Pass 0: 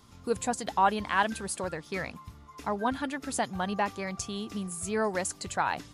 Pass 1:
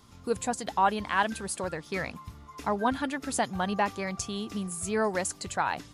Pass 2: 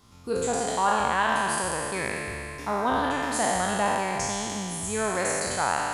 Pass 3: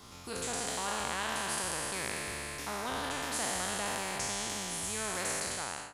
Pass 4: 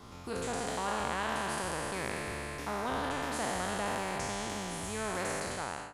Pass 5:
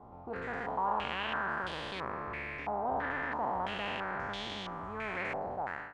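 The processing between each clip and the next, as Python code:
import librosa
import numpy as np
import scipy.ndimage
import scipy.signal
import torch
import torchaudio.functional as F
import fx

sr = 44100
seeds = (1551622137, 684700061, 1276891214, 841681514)

y1 = fx.rider(x, sr, range_db=10, speed_s=2.0)
y2 = fx.spec_trails(y1, sr, decay_s=2.89)
y2 = y2 * librosa.db_to_amplitude(-2.5)
y3 = fx.fade_out_tail(y2, sr, length_s=0.61)
y3 = fx.spectral_comp(y3, sr, ratio=2.0)
y3 = y3 * librosa.db_to_amplitude(-8.0)
y4 = fx.high_shelf(y3, sr, hz=2400.0, db=-11.5)
y4 = y4 * librosa.db_to_amplitude(4.0)
y5 = fx.filter_held_lowpass(y4, sr, hz=3.0, low_hz=780.0, high_hz=3500.0)
y5 = y5 * librosa.db_to_amplitude(-5.0)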